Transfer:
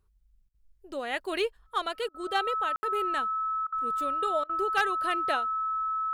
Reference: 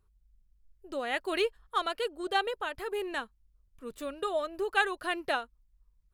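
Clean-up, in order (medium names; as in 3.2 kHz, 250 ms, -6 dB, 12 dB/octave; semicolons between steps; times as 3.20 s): clip repair -17 dBFS; band-stop 1.3 kHz, Q 30; room tone fill 2.76–2.83 s; interpolate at 0.49/2.09/3.67/4.44 s, 52 ms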